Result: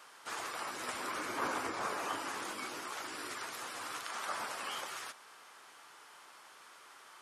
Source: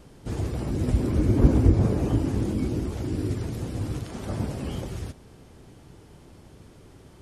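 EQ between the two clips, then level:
high-pass with resonance 1,200 Hz, resonance Q 2.1
+2.0 dB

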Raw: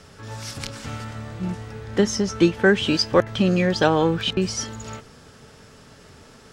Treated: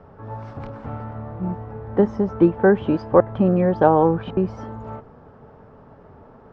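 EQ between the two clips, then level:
low-pass with resonance 890 Hz, resonance Q 1.7
+1.0 dB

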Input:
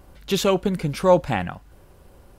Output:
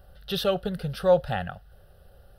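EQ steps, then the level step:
phaser with its sweep stopped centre 1,500 Hz, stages 8
−2.0 dB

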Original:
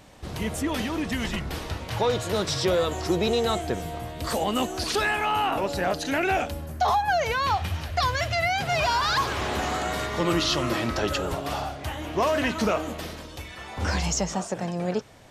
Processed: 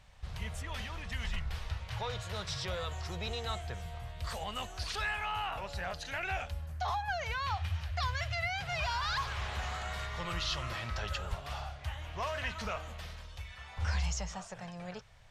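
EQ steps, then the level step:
RIAA equalisation playback
guitar amp tone stack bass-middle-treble 10-0-10
low-shelf EQ 150 Hz −10 dB
−1.5 dB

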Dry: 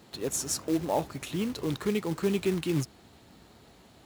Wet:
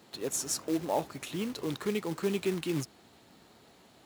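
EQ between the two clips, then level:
high-pass filter 200 Hz 6 dB per octave
−1.5 dB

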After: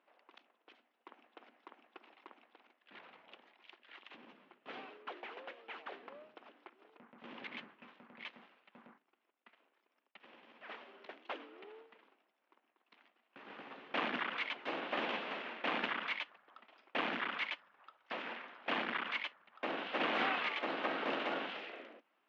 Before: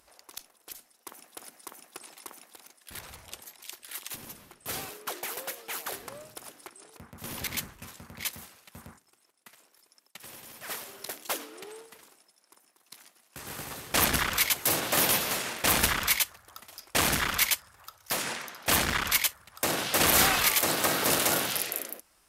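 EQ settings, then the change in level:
elliptic band-pass filter 230–3,000 Hz, stop band 60 dB
high-frequency loss of the air 80 metres
−7.5 dB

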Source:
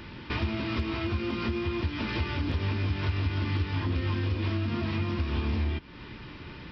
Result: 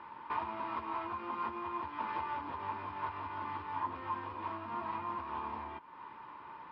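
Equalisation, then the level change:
resonant band-pass 970 Hz, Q 6.4
high-frequency loss of the air 110 metres
+10.0 dB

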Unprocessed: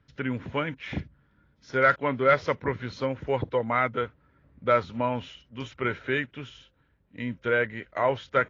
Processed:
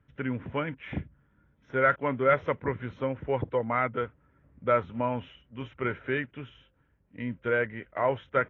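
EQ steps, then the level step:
Butterworth band-reject 4,600 Hz, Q 1.9
high-frequency loss of the air 270 metres
−1.0 dB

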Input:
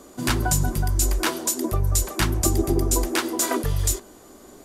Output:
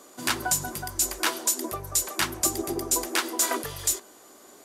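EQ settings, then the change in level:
high-pass filter 730 Hz 6 dB per octave
0.0 dB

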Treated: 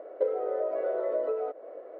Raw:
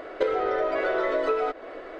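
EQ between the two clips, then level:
resonant band-pass 540 Hz, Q 3.5
0.0 dB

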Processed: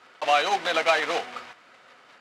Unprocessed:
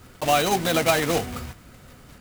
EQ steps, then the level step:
band-pass filter 690–3,600 Hz
+2.0 dB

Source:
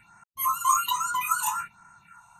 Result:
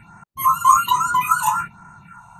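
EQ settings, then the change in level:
tilt shelving filter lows +7 dB, about 1,300 Hz
parametric band 160 Hz +3.5 dB 1.1 octaves
+8.5 dB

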